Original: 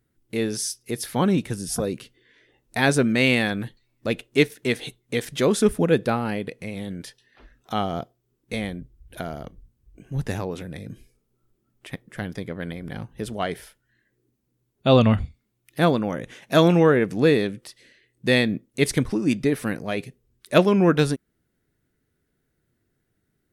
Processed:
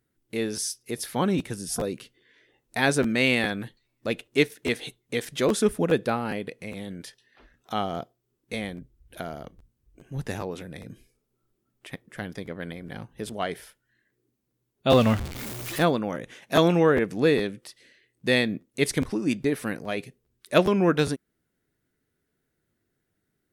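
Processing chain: 14.9–15.83 zero-crossing step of -25.5 dBFS; low shelf 160 Hz -6.5 dB; crackling interface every 0.41 s, samples 512, repeat, from 0.56; gain -2 dB

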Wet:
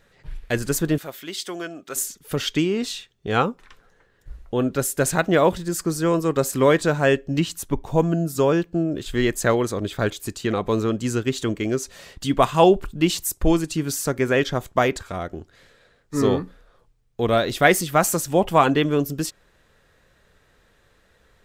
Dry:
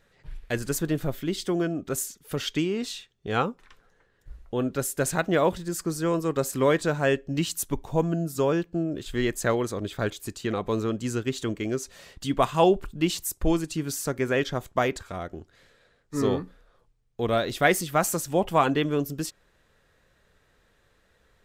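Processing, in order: 0.98–1.96 HPF 1300 Hz 6 dB/oct; 7.4–7.86 high shelf 3900 Hz -9 dB; gain +5 dB

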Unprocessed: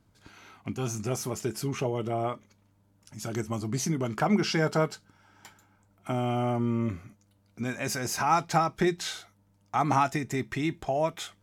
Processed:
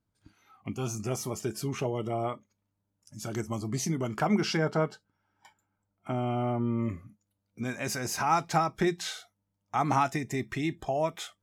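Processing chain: spectral noise reduction 14 dB; 4.57–6.78 LPF 2400 Hz 6 dB/oct; gain -1.5 dB

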